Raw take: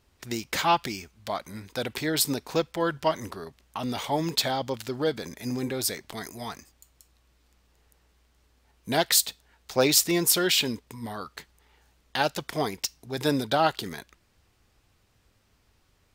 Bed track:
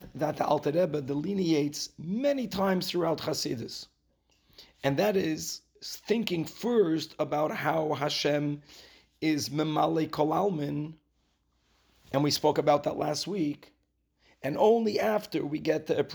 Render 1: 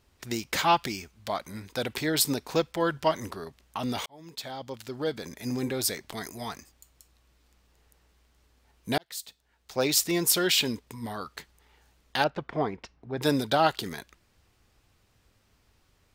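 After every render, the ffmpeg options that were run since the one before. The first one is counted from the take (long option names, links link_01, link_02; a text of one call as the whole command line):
ffmpeg -i in.wav -filter_complex "[0:a]asettb=1/sr,asplit=3[link_01][link_02][link_03];[link_01]atrim=end=12.244[link_04];[link_02]atrim=start=12.24:end=13.22,asetpts=PTS-STARTPTS,afade=type=in:duration=0.004:curve=qsin,afade=type=out:start_time=0.976:duration=0.004:curve=qsin,lowpass=1700[link_05];[link_03]atrim=start=13.216[link_06];[link_04][link_05]acrossfade=duration=0.004:curve1=hsin:curve2=qsin[link_07];[link_07][link_06]acrossfade=duration=0.004:curve1=qsin:curve2=hsin,asplit=3[link_08][link_09][link_10];[link_08]atrim=end=4.06,asetpts=PTS-STARTPTS,afade=type=out:start_time=4.056:duration=0.004:curve=hsin[link_11];[link_09]atrim=start=4.06:end=8.98,asetpts=PTS-STARTPTS,afade=type=in:duration=1.54,afade=type=out:start_time=4.916:duration=0.004:curve=hsin[link_12];[link_10]atrim=start=8.98,asetpts=PTS-STARTPTS,afade=type=in:duration=2.09:curve=qsin[link_13];[link_11][link_12][link_13]concat=n=3:v=0:a=1" out.wav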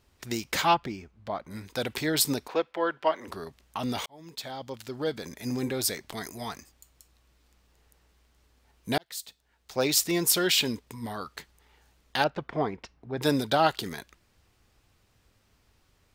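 ffmpeg -i in.wav -filter_complex "[0:a]asplit=3[link_01][link_02][link_03];[link_01]afade=type=out:start_time=0.73:duration=0.02[link_04];[link_02]lowpass=frequency=1000:poles=1,afade=type=in:start_time=0.73:duration=0.02,afade=type=out:start_time=1.5:duration=0.02[link_05];[link_03]afade=type=in:start_time=1.5:duration=0.02[link_06];[link_04][link_05][link_06]amix=inputs=3:normalize=0,asettb=1/sr,asplit=3[link_07][link_08][link_09];[link_07]atrim=end=2.484[link_10];[link_08]atrim=start=2.48:end=3.28,asetpts=PTS-STARTPTS,afade=type=in:duration=0.004:curve=qsin,afade=type=out:start_time=0.796:duration=0.004:curve=qsin,acrossover=split=290 3400:gain=0.0794 1 0.112[link_11][link_12][link_13];[link_11][link_12][link_13]amix=inputs=3:normalize=0[link_14];[link_09]atrim=start=3.276[link_15];[link_10][link_14]acrossfade=duration=0.004:curve1=hsin:curve2=qsin[link_16];[link_16][link_15]acrossfade=duration=0.004:curve1=qsin:curve2=hsin" out.wav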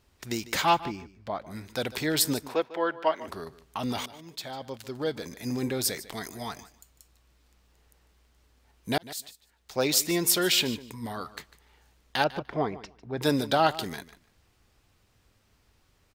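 ffmpeg -i in.wav -af "aecho=1:1:149|298:0.141|0.0226" out.wav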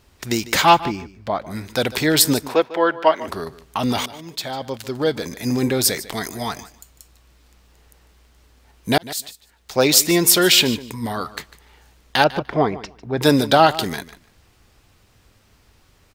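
ffmpeg -i in.wav -af "volume=10dB,alimiter=limit=-1dB:level=0:latency=1" out.wav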